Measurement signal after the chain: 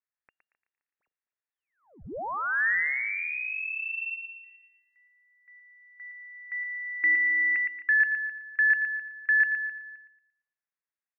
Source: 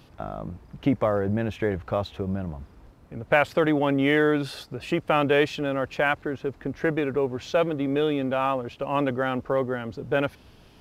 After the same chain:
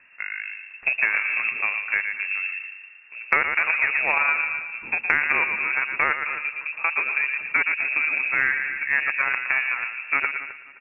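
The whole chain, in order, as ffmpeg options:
-filter_complex "[0:a]equalizer=f=1000:t=o:w=1:g=9.5,asplit=2[s0][s1];[s1]adelay=115,lowpass=f=1500:p=1,volume=0.631,asplit=2[s2][s3];[s3]adelay=115,lowpass=f=1500:p=1,volume=0.44,asplit=2[s4][s5];[s5]adelay=115,lowpass=f=1500:p=1,volume=0.44,asplit=2[s6][s7];[s7]adelay=115,lowpass=f=1500:p=1,volume=0.44,asplit=2[s8][s9];[s9]adelay=115,lowpass=f=1500:p=1,volume=0.44,asplit=2[s10][s11];[s11]adelay=115,lowpass=f=1500:p=1,volume=0.44[s12];[s2][s4][s6][s8][s10][s12]amix=inputs=6:normalize=0[s13];[s0][s13]amix=inputs=2:normalize=0,aeval=exprs='0.891*(cos(1*acos(clip(val(0)/0.891,-1,1)))-cos(1*PI/2))+0.0631*(cos(3*acos(clip(val(0)/0.891,-1,1)))-cos(3*PI/2))+0.0562*(cos(7*acos(clip(val(0)/0.891,-1,1)))-cos(7*PI/2))':c=same,asplit=2[s14][s15];[s15]aecho=0:1:261|522:0.126|0.0327[s16];[s14][s16]amix=inputs=2:normalize=0,lowpass=f=2400:t=q:w=0.5098,lowpass=f=2400:t=q:w=0.6013,lowpass=f=2400:t=q:w=0.9,lowpass=f=2400:t=q:w=2.563,afreqshift=-2800,acompressor=threshold=0.0562:ratio=3,volume=2"

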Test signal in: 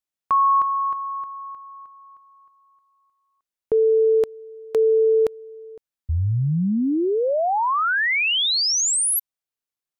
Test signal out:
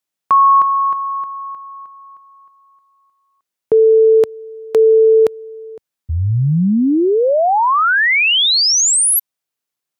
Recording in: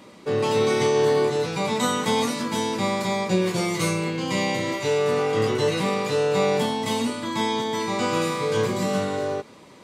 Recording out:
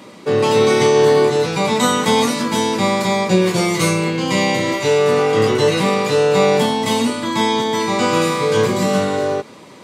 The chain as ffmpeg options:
-af "highpass=93,volume=2.37"

